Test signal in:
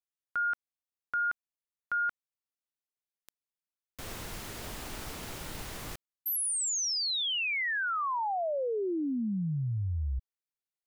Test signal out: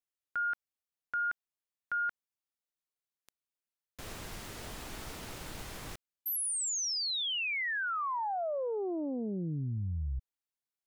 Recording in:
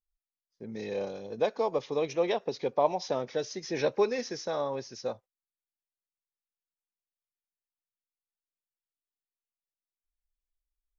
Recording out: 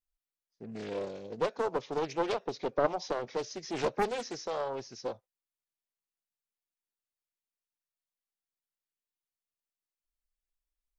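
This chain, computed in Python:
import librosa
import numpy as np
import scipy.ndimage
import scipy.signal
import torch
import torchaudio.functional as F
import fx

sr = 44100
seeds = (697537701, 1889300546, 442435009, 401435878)

y = fx.doppler_dist(x, sr, depth_ms=0.72)
y = y * librosa.db_to_amplitude(-2.5)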